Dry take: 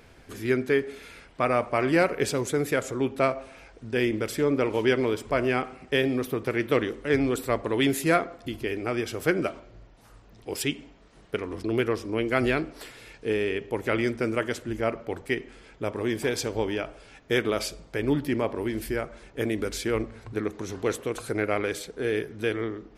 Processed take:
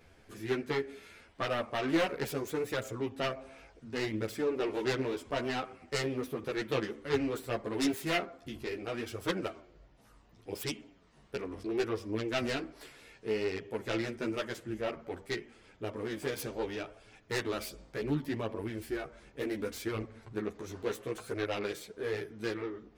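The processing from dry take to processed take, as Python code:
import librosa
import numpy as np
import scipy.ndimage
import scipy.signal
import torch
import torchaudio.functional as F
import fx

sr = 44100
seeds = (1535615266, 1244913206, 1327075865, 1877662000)

y = fx.self_delay(x, sr, depth_ms=0.25)
y = fx.chorus_voices(y, sr, voices=2, hz=0.7, base_ms=12, depth_ms=3.0, mix_pct=50)
y = y * librosa.db_to_amplitude(-4.5)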